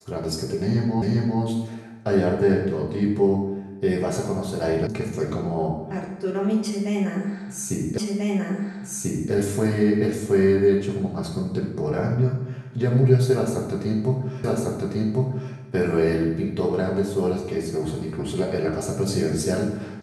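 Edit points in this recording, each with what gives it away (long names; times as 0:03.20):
0:01.02: the same again, the last 0.4 s
0:04.87: cut off before it has died away
0:07.98: the same again, the last 1.34 s
0:14.44: the same again, the last 1.1 s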